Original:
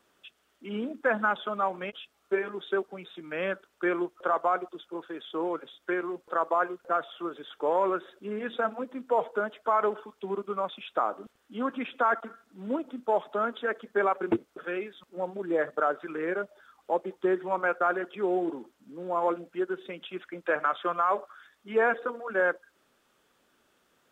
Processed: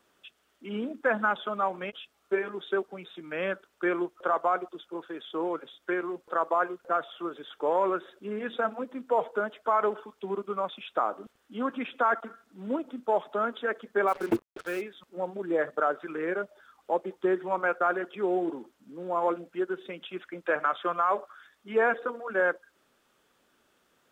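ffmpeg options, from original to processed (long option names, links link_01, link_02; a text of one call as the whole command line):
ffmpeg -i in.wav -filter_complex "[0:a]asplit=3[link_01][link_02][link_03];[link_01]afade=type=out:start_time=14.07:duration=0.02[link_04];[link_02]acrusher=bits=6:mix=0:aa=0.5,afade=type=in:start_time=14.07:duration=0.02,afade=type=out:start_time=14.8:duration=0.02[link_05];[link_03]afade=type=in:start_time=14.8:duration=0.02[link_06];[link_04][link_05][link_06]amix=inputs=3:normalize=0" out.wav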